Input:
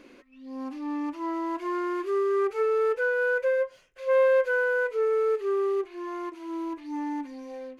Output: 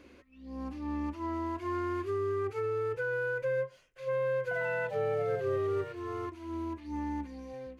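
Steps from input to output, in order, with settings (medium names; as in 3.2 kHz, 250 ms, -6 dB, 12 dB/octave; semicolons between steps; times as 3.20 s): octave divider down 2 oct, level -4 dB; peak limiter -21.5 dBFS, peak gain reduction 7 dB; 4.41–6.79 s: ever faster or slower copies 101 ms, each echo +5 st, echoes 2, each echo -6 dB; trim -4.5 dB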